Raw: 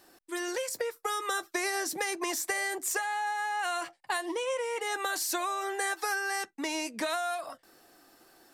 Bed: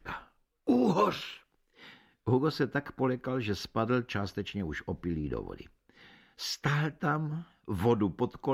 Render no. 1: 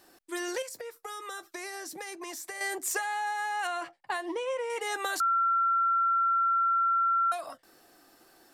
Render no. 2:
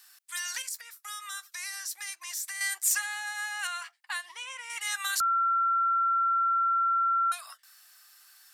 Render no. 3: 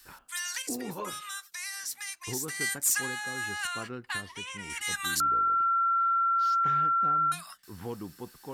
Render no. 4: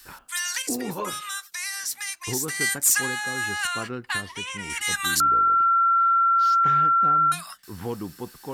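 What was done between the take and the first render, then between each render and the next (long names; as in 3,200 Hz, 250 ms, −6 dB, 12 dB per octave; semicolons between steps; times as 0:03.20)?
0:00.62–0:02.61: downward compressor 2 to 1, threshold −43 dBFS; 0:03.67–0:04.70: high-shelf EQ 4,200 Hz −11.5 dB; 0:05.20–0:07.32: beep over 1,360 Hz −22.5 dBFS
high-pass filter 1,200 Hz 24 dB per octave; high-shelf EQ 3,100 Hz +8 dB
mix in bed −11.5 dB
level +6.5 dB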